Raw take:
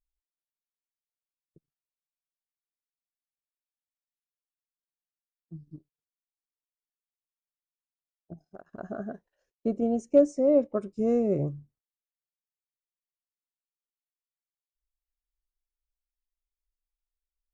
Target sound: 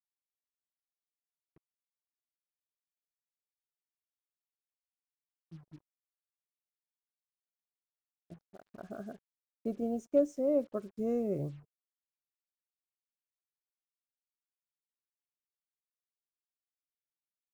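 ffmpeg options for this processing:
-af "acrusher=bits=8:mix=0:aa=0.5,volume=0.422"

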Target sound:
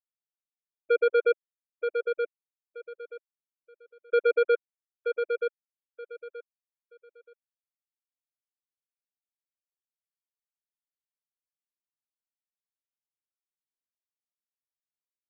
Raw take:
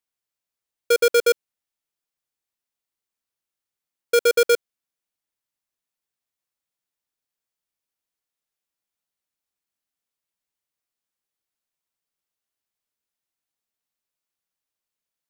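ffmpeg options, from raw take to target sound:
-filter_complex "[0:a]afftfilt=real='re*gte(hypot(re,im),0.251)':imag='im*gte(hypot(re,im),0.251)':win_size=1024:overlap=0.75,equalizer=f=250:t=o:w=1:g=-5,equalizer=f=4000:t=o:w=1:g=-11,equalizer=f=8000:t=o:w=1:g=-10,asplit=2[s0][s1];[s1]aecho=0:1:927|1854|2781:0.501|0.11|0.0243[s2];[s0][s2]amix=inputs=2:normalize=0,volume=0.668"

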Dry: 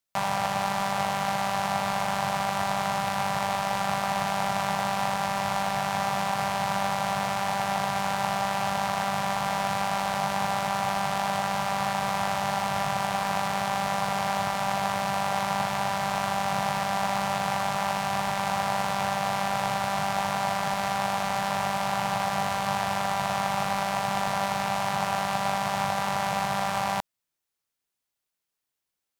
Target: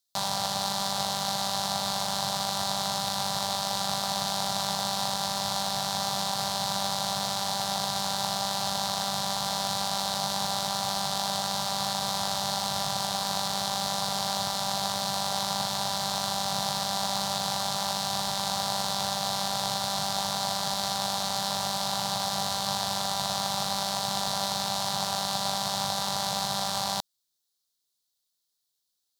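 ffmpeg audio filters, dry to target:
-af "highshelf=f=3100:t=q:w=3:g=8.5,volume=0.631"

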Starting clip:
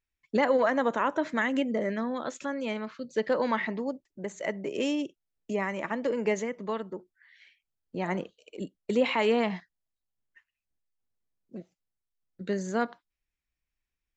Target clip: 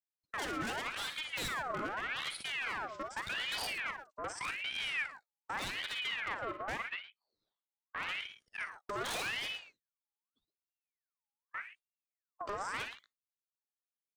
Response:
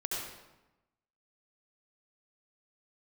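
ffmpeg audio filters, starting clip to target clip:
-filter_complex "[0:a]asettb=1/sr,asplit=3[s0][s1][s2];[s0]atrim=end=5.684[s3];[s1]atrim=start=5.68:end=8.18,asetpts=PTS-STARTPTS,afade=t=in:d=0.004:c=qsin,afade=t=out:st=2.496:d=0.004:c=qsin,lowpass=1600[s4];[s2]atrim=start=8.176[s5];[s3][s4]acrossfade=d=0.004:c1=hsin:c2=qsin[s6];[s6][s5]acrossfade=d=0.004:c1=qsin:c2=hsin,afwtdn=0.0178,agate=range=0.141:threshold=0.00447:ratio=16:detection=peak,lowshelf=f=200:g=2.5,acompressor=threshold=0.0251:ratio=10,aeval=exprs='(tanh(63.1*val(0)+0.15)-tanh(0.15))/63.1':c=same,crystalizer=i=9:c=0,aeval=exprs='0.0211*(abs(mod(val(0)/0.0211+3,4)-2)-1)':c=same,aecho=1:1:44|57|112|130:0.251|0.316|0.2|0.106,aeval=exprs='val(0)*sin(2*PI*1800*n/s+1800*0.55/0.84*sin(2*PI*0.84*n/s))':c=same,volume=1.41"

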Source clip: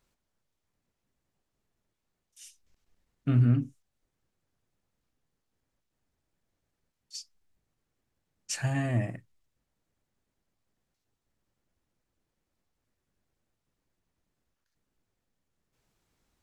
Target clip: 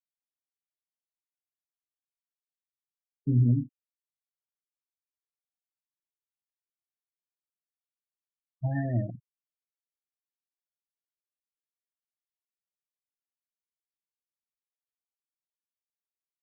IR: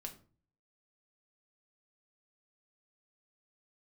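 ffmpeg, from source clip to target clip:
-af "bandreject=f=2100:w=5.4,afftfilt=real='re*gte(hypot(re,im),0.0398)':imag='im*gte(hypot(re,im),0.0398)':win_size=1024:overlap=0.75,afftfilt=real='re*lt(b*sr/1024,210*pow(2100/210,0.5+0.5*sin(2*PI*0.59*pts/sr)))':imag='im*lt(b*sr/1024,210*pow(2100/210,0.5+0.5*sin(2*PI*0.59*pts/sr)))':win_size=1024:overlap=0.75"

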